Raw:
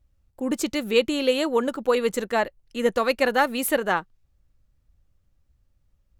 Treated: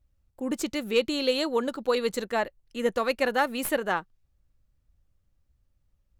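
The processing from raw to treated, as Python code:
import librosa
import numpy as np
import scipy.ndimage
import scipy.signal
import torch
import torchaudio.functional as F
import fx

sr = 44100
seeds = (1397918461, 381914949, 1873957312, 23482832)

y = fx.tracing_dist(x, sr, depth_ms=0.022)
y = fx.peak_eq(y, sr, hz=4200.0, db=8.0, octaves=0.39, at=(1.01, 2.25))
y = y * 10.0 ** (-4.0 / 20.0)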